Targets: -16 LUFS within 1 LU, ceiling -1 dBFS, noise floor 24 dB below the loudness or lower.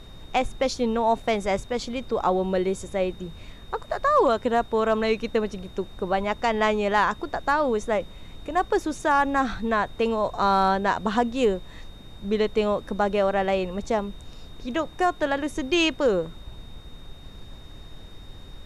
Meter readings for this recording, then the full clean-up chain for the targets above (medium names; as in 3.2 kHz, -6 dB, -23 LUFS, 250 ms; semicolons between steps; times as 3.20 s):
steady tone 3.7 kHz; tone level -51 dBFS; noise floor -44 dBFS; noise floor target -49 dBFS; loudness -24.5 LUFS; peak level -10.5 dBFS; loudness target -16.0 LUFS
-> band-stop 3.7 kHz, Q 30; noise print and reduce 6 dB; trim +8.5 dB